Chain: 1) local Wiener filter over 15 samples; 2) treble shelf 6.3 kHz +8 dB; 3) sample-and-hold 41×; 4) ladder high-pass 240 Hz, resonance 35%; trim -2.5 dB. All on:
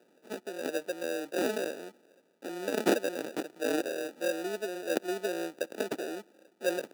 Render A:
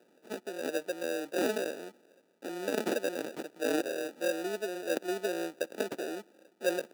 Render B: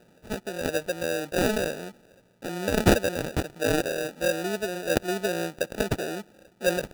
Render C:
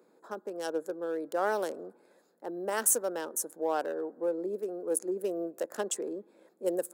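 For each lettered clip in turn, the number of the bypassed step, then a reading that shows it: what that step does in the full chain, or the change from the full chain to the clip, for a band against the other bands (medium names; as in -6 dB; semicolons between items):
2, crest factor change -4.5 dB; 4, 125 Hz band +13.0 dB; 3, crest factor change -2.5 dB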